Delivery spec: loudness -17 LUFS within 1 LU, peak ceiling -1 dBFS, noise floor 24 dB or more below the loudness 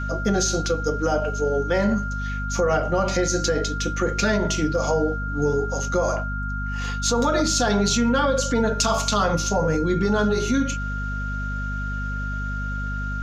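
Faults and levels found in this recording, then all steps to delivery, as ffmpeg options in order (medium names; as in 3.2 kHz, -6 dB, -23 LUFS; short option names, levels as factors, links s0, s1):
hum 50 Hz; highest harmonic 250 Hz; hum level -26 dBFS; steady tone 1.4 kHz; tone level -30 dBFS; loudness -23.0 LUFS; peak level -8.5 dBFS; loudness target -17.0 LUFS
-> -af "bandreject=f=50:t=h:w=4,bandreject=f=100:t=h:w=4,bandreject=f=150:t=h:w=4,bandreject=f=200:t=h:w=4,bandreject=f=250:t=h:w=4"
-af "bandreject=f=1400:w=30"
-af "volume=2"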